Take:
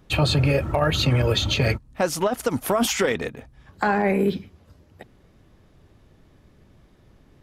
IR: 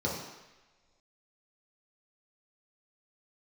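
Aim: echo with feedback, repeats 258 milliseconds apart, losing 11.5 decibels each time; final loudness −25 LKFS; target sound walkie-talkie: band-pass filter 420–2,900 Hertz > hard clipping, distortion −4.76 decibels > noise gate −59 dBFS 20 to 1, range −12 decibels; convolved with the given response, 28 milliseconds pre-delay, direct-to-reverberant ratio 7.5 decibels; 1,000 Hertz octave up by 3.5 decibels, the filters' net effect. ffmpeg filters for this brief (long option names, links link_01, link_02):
-filter_complex "[0:a]equalizer=frequency=1000:width_type=o:gain=5,aecho=1:1:258|516|774:0.266|0.0718|0.0194,asplit=2[link_01][link_02];[1:a]atrim=start_sample=2205,adelay=28[link_03];[link_02][link_03]afir=irnorm=-1:irlink=0,volume=-15.5dB[link_04];[link_01][link_04]amix=inputs=2:normalize=0,highpass=420,lowpass=2900,asoftclip=type=hard:threshold=-26dB,agate=range=-12dB:threshold=-59dB:ratio=20,volume=4dB"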